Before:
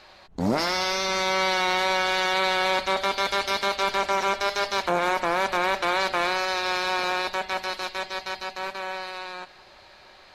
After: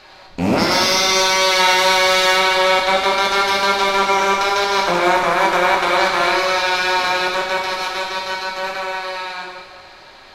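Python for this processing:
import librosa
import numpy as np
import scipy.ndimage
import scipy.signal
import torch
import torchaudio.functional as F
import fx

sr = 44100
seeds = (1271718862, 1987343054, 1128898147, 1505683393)

y = fx.rattle_buzz(x, sr, strikes_db=-34.0, level_db=-25.0)
y = fx.high_shelf(y, sr, hz=5300.0, db=9.5, at=(0.71, 2.36))
y = fx.rev_plate(y, sr, seeds[0], rt60_s=1.6, hf_ratio=0.95, predelay_ms=0, drr_db=-1.0)
y = y * librosa.db_to_amplitude(5.0)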